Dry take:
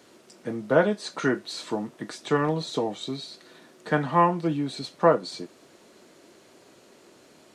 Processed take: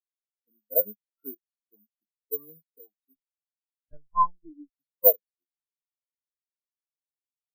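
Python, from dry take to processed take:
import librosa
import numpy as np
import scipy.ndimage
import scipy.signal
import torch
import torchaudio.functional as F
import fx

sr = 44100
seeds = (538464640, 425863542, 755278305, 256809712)

y = (np.kron(scipy.signal.resample_poly(x, 1, 3), np.eye(3)[0]) * 3)[:len(x)]
y = fx.lpc_vocoder(y, sr, seeds[0], excitation='pitch_kept', order=8, at=(3.15, 4.76))
y = fx.spectral_expand(y, sr, expansion=4.0)
y = F.gain(torch.from_numpy(y), -4.0).numpy()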